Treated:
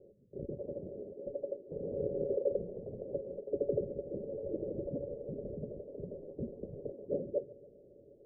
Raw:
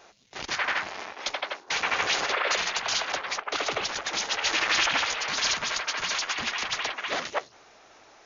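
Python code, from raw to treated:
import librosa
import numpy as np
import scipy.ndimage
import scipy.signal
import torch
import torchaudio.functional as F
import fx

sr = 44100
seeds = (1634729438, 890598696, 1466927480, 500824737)

y = scipy.signal.sosfilt(scipy.signal.cheby1(6, 6, 580.0, 'lowpass', fs=sr, output='sos'), x)
y = fx.echo_feedback(y, sr, ms=143, feedback_pct=53, wet_db=-20.5)
y = y * librosa.db_to_amplitude(6.5)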